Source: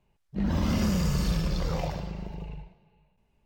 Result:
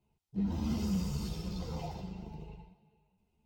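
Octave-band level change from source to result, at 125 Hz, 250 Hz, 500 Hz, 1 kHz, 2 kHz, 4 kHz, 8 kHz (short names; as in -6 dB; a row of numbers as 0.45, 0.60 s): -8.5, -6.0, -10.0, -9.5, -14.5, -9.5, -9.0 dB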